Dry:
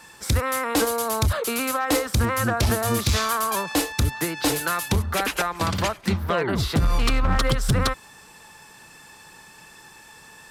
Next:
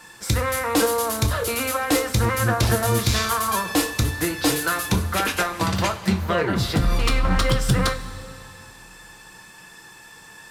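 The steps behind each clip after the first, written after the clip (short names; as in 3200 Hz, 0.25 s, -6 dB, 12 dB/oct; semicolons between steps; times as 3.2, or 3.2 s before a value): two-slope reverb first 0.23 s, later 2.7 s, from -18 dB, DRR 3 dB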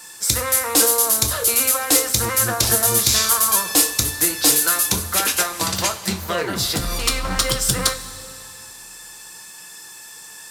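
tone controls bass -6 dB, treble +14 dB; gain -1 dB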